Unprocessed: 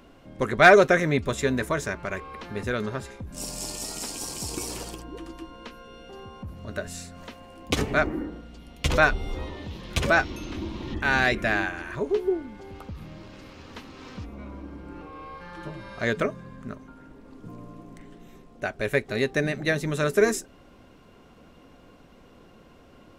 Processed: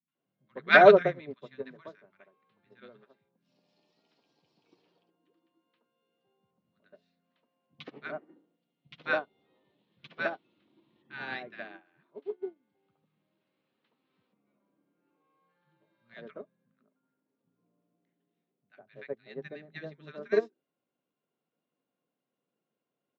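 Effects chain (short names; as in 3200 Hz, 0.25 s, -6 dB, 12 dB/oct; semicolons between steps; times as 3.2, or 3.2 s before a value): elliptic band-pass 150–3900 Hz, stop band 40 dB; three bands offset in time lows, highs, mids 80/150 ms, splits 200/1100 Hz; upward expander 2.5:1, over -36 dBFS; gain +2.5 dB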